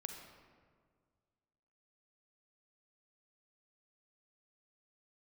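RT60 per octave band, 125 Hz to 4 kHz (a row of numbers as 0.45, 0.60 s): 2.2, 2.0, 1.9, 1.7, 1.4, 1.0 s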